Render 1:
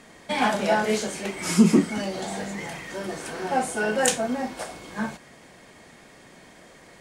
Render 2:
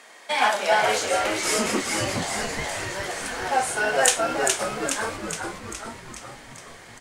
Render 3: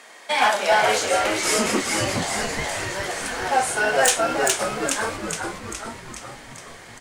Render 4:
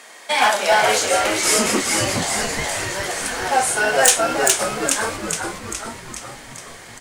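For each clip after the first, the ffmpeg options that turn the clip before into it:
ffmpeg -i in.wav -filter_complex "[0:a]highpass=650,asplit=2[link_01][link_02];[link_02]asplit=8[link_03][link_04][link_05][link_06][link_07][link_08][link_09][link_10];[link_03]adelay=417,afreqshift=-110,volume=-4dB[link_11];[link_04]adelay=834,afreqshift=-220,volume=-8.6dB[link_12];[link_05]adelay=1251,afreqshift=-330,volume=-13.2dB[link_13];[link_06]adelay=1668,afreqshift=-440,volume=-17.7dB[link_14];[link_07]adelay=2085,afreqshift=-550,volume=-22.3dB[link_15];[link_08]adelay=2502,afreqshift=-660,volume=-26.9dB[link_16];[link_09]adelay=2919,afreqshift=-770,volume=-31.5dB[link_17];[link_10]adelay=3336,afreqshift=-880,volume=-36.1dB[link_18];[link_11][link_12][link_13][link_14][link_15][link_16][link_17][link_18]amix=inputs=8:normalize=0[link_19];[link_01][link_19]amix=inputs=2:normalize=0,volume=4dB" out.wav
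ffmpeg -i in.wav -af "asoftclip=type=hard:threshold=-12.5dB,volume=2.5dB" out.wav
ffmpeg -i in.wav -af "highshelf=frequency=5700:gain=6,volume=2dB" out.wav

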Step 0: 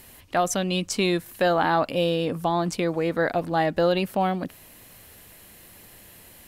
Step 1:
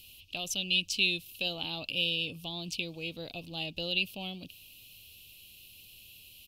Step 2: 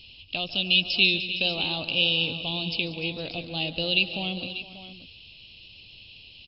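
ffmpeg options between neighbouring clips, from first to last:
ffmpeg -i in.wav -af "firequalizer=gain_entry='entry(100,0);entry(200,-7);entry(1800,-28);entry(2600,14);entry(7800,-2);entry(14000,5)':delay=0.05:min_phase=1,volume=-8.5dB" out.wav
ffmpeg -i in.wav -af "aecho=1:1:144|186|299|462|589:0.141|0.15|0.158|0.15|0.224,volume=7.5dB" -ar 12000 -c:a libmp3lame -b:a 48k out.mp3

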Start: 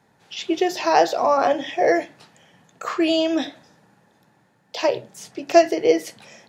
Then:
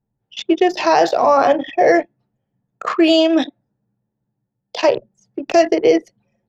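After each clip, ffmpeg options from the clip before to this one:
ffmpeg -i in.wav -filter_complex "[0:a]anlmdn=100,acrossover=split=160[link_01][link_02];[link_02]alimiter=limit=-11dB:level=0:latency=1:release=29[link_03];[link_01][link_03]amix=inputs=2:normalize=0,volume=7dB" out.wav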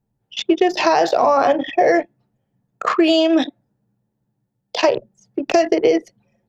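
ffmpeg -i in.wav -af "acompressor=threshold=-14dB:ratio=6,volume=3dB" out.wav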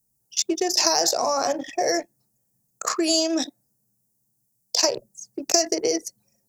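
ffmpeg -i in.wav -af "aexciter=amount=15.9:drive=7.4:freq=5000,volume=-9dB" out.wav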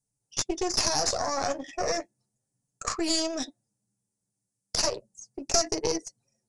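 ffmpeg -i in.wav -af "flanger=delay=6.8:depth=4.4:regen=-30:speed=0.34:shape=sinusoidal,aeval=exprs='0.501*(cos(1*acos(clip(val(0)/0.501,-1,1)))-cos(1*PI/2))+0.158*(cos(4*acos(clip(val(0)/0.501,-1,1)))-cos(4*PI/2))':channel_layout=same,aresample=22050,aresample=44100,volume=-2.5dB" out.wav

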